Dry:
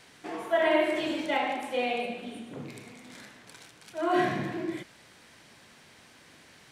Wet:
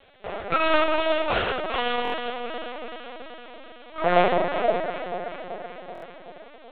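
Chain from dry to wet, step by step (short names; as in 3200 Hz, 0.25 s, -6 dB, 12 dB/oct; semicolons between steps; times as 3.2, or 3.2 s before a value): 3.98–4.42 octaver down 1 oct, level -5 dB; full-wave rectifier; low shelf 370 Hz -9 dB; in parallel at -6 dB: crossover distortion -42.5 dBFS; 1.28–1.86 on the sum: HPF 41 Hz; echo with dull and thin repeats by turns 0.191 s, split 1100 Hz, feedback 78%, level -6 dB; LPC vocoder at 8 kHz pitch kept; band shelf 530 Hz +11.5 dB 1.2 oct; stuck buffer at 2.03/5.93, samples 1024, times 3; gain +3 dB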